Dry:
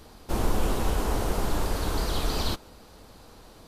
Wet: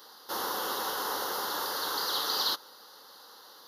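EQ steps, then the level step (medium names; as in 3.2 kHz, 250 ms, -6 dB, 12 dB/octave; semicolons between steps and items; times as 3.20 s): resonant high-pass 620 Hz, resonance Q 4.9; treble shelf 3.6 kHz +10.5 dB; static phaser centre 2.4 kHz, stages 6; 0.0 dB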